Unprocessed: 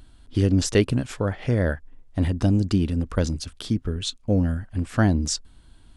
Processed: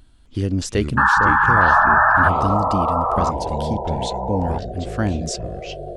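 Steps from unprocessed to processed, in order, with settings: painted sound noise, 0.97–2.29 s, 800–1800 Hz -13 dBFS; ever faster or slower copies 257 ms, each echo -5 st, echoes 3, each echo -6 dB; trim -2 dB

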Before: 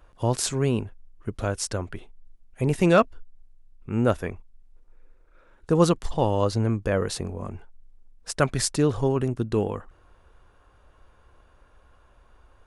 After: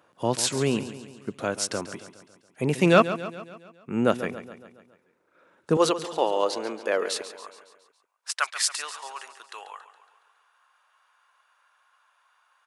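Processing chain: high-pass 150 Hz 24 dB/octave, from 5.77 s 350 Hz, from 7.22 s 940 Hz; dynamic bell 3 kHz, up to +5 dB, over -44 dBFS, Q 0.84; feedback delay 139 ms, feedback 55%, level -13 dB

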